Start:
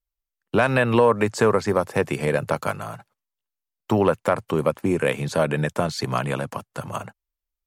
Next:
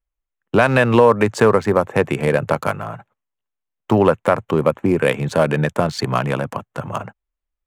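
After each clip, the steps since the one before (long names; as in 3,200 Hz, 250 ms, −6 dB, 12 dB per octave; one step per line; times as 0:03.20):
adaptive Wiener filter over 9 samples
level +5 dB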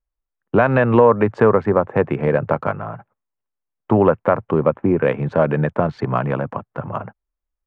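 low-pass filter 1,600 Hz 12 dB per octave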